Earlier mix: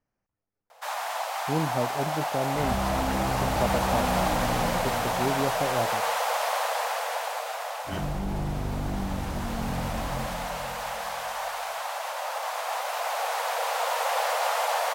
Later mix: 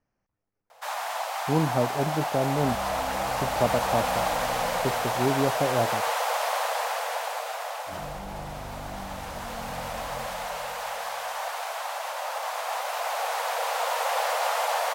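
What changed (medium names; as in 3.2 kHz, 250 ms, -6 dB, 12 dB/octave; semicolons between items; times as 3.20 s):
speech +3.5 dB; second sound -10.0 dB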